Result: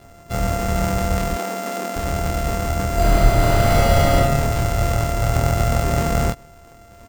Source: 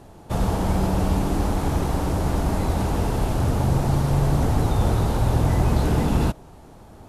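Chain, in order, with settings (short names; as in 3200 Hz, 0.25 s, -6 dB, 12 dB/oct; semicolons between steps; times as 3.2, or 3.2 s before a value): sample sorter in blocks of 64 samples; 1.34–1.96 elliptic high-pass 200 Hz, stop band 40 dB; doubler 26 ms -3 dB; 2.94–4.14 reverb throw, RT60 1.3 s, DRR -5.5 dB; gain -2 dB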